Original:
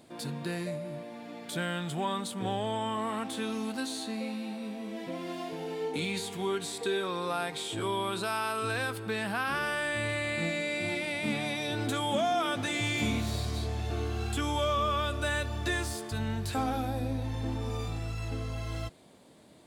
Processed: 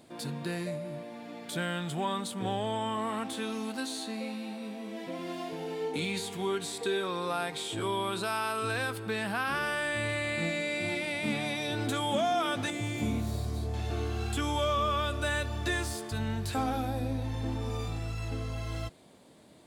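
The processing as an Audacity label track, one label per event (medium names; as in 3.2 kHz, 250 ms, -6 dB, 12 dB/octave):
3.330000	5.190000	high-pass 160 Hz 6 dB/octave
12.700000	13.740000	peaking EQ 3.2 kHz -9.5 dB 2.9 oct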